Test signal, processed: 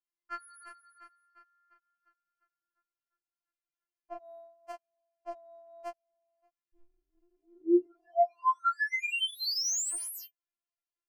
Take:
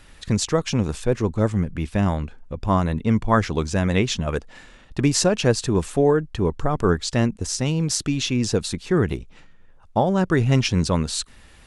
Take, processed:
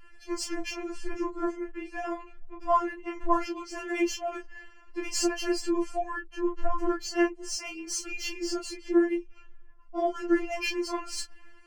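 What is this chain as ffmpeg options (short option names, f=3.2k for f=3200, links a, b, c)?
-af "flanger=delay=22.5:depth=5.9:speed=0.32,adynamicsmooth=sensitivity=4.5:basefreq=5.1k,asuperstop=centerf=3700:order=4:qfactor=3.7,afftfilt=real='re*4*eq(mod(b,16),0)':imag='im*4*eq(mod(b,16),0)':win_size=2048:overlap=0.75"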